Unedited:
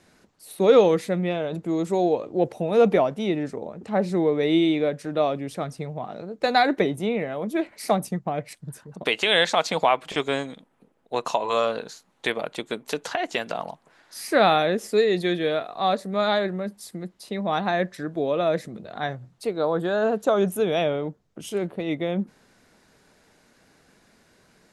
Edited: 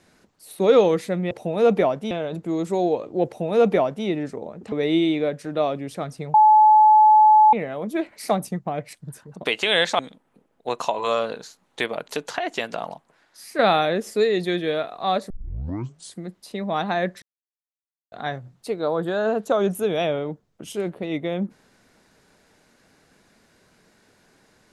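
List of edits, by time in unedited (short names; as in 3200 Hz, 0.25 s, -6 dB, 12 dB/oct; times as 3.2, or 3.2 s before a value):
2.46–3.26 copy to 1.31
3.92–4.32 cut
5.94–7.13 bleep 859 Hz -9.5 dBFS
9.59–10.45 cut
12.54–12.85 cut
13.67–14.36 fade out quadratic, to -7 dB
16.07 tape start 0.87 s
17.99–18.89 mute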